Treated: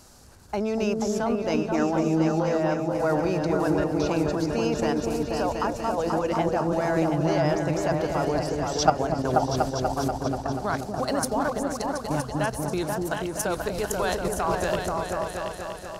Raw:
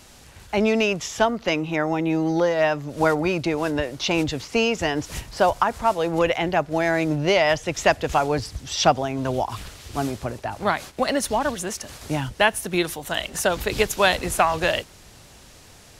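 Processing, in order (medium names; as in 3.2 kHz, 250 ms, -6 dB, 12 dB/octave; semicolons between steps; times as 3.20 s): high-order bell 2.6 kHz -9 dB 1.2 oct; level held to a coarse grid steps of 13 dB; delay with an opening low-pass 242 ms, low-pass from 400 Hz, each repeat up 2 oct, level 0 dB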